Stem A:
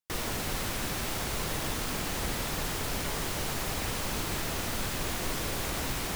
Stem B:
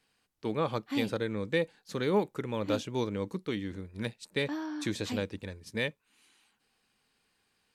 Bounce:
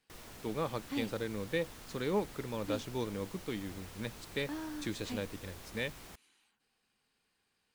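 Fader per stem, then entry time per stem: −18.0, −5.0 decibels; 0.00, 0.00 seconds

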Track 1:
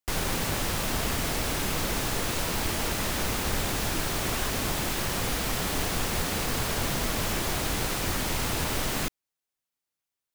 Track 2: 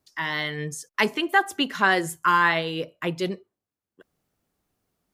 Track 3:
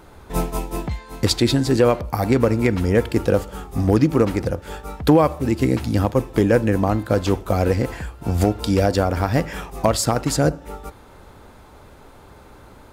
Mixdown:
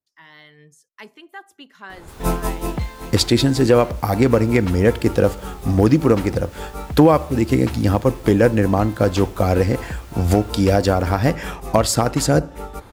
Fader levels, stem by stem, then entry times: −18.0, −18.0, +2.0 decibels; 2.00, 0.00, 1.90 seconds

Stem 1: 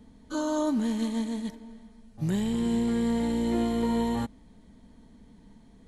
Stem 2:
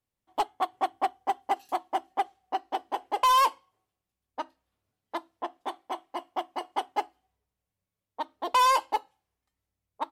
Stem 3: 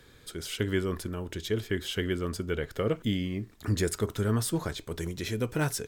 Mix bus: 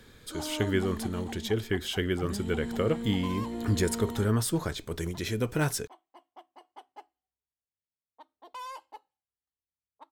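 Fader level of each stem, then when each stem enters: −9.5, −19.5, +1.0 decibels; 0.00, 0.00, 0.00 seconds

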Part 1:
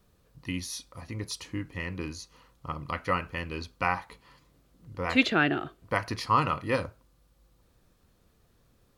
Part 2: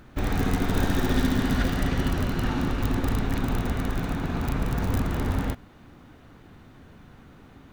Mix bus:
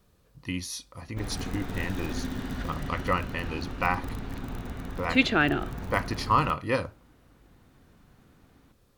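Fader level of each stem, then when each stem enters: +1.0, −10.0 decibels; 0.00, 1.00 seconds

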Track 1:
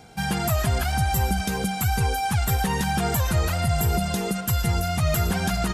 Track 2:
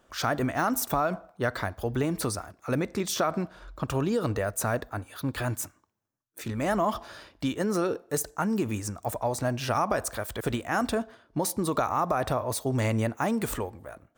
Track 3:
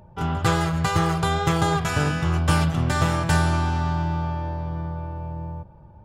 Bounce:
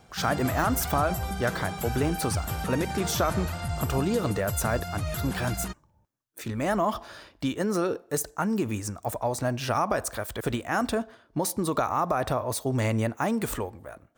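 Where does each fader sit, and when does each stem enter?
−9.5, +0.5, −18.0 decibels; 0.00, 0.00, 0.00 seconds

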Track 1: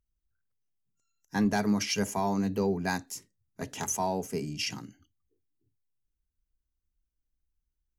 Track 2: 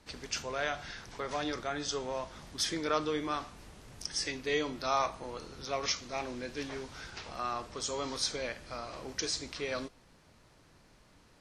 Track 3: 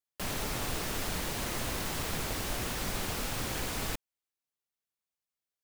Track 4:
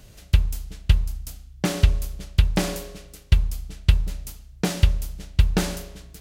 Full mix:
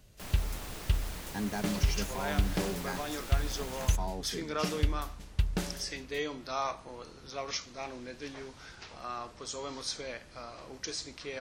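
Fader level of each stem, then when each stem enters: −8.5, −3.5, −8.5, −11.0 decibels; 0.00, 1.65, 0.00, 0.00 seconds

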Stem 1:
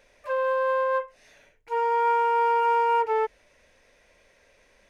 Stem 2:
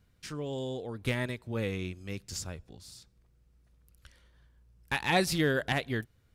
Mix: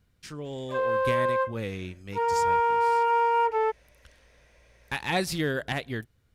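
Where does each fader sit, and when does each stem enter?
−1.0, −0.5 decibels; 0.45, 0.00 seconds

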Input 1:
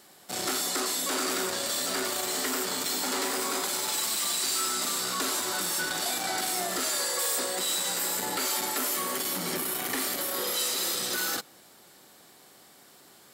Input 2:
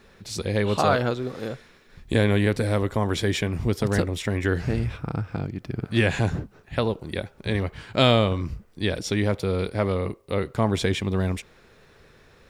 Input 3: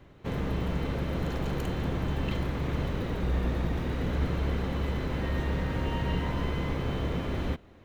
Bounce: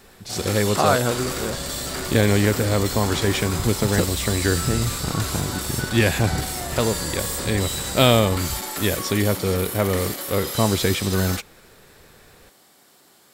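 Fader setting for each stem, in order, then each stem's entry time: 0.0, +2.5, −5.0 decibels; 0.00, 0.00, 0.85 seconds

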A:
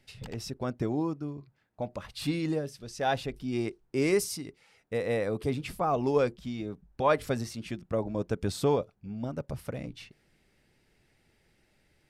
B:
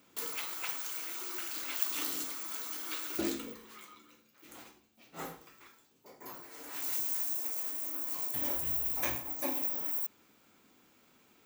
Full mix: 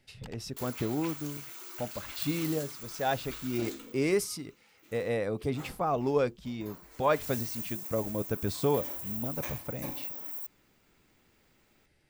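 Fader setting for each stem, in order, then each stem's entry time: −1.5, −5.0 decibels; 0.00, 0.40 seconds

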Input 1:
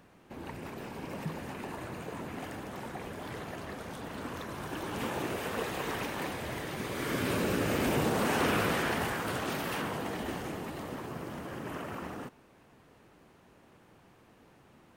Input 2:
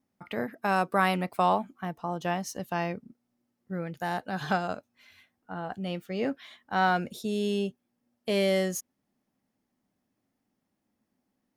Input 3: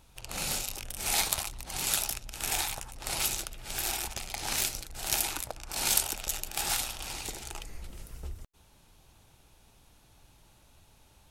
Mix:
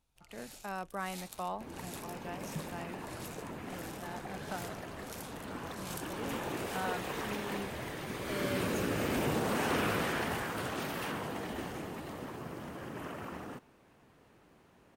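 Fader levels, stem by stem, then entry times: −3.0, −14.0, −20.0 decibels; 1.30, 0.00, 0.00 seconds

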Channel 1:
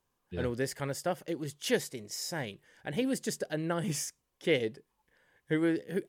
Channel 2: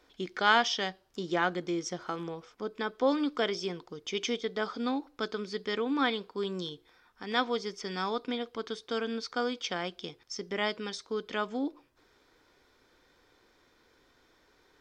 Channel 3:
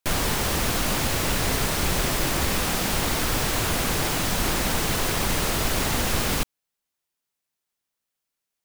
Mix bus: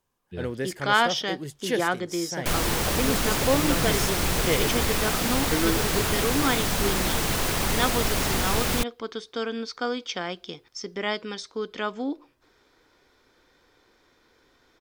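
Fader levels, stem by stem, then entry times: +2.0, +3.0, −1.0 decibels; 0.00, 0.45, 2.40 seconds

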